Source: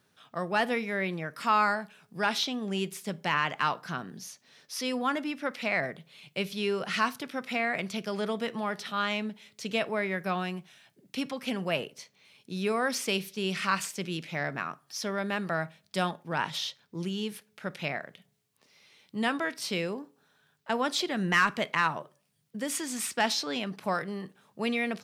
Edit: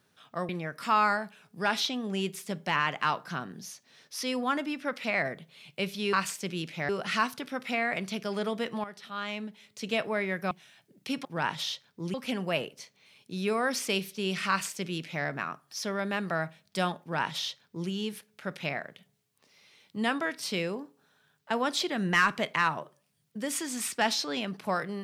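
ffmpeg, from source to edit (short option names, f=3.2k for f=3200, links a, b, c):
-filter_complex "[0:a]asplit=8[a][b][c][d][e][f][g][h];[a]atrim=end=0.492[i];[b]atrim=start=1.068:end=6.712[j];[c]atrim=start=13.678:end=14.442[k];[d]atrim=start=6.708:end=8.66,asetpts=PTS-STARTPTS,afade=t=out:st=1.948:d=0.004:c=hsin:silence=0.251189[l];[e]atrim=start=8.66:end=10.332,asetpts=PTS-STARTPTS,afade=t=in:d=1.13:silence=0.251189[m];[f]atrim=start=10.588:end=11.332[n];[g]atrim=start=16.198:end=17.092[o];[h]atrim=start=11.328[p];[i][j]acrossfade=d=0.004:c1=hsin:c2=hsin[q];[q][k]acrossfade=d=0.004:c1=hsin:c2=hsin[r];[l][m]concat=n=2:v=0:a=1[s];[r][s]acrossfade=d=0.004:c1=hsin:c2=hsin[t];[t][n]acrossfade=d=0.004:c1=hsin:c2=hsin[u];[u][o]acrossfade=d=0.004:c1=hsin:c2=hsin[v];[v][p]acrossfade=d=0.004:c1=hsin:c2=hsin"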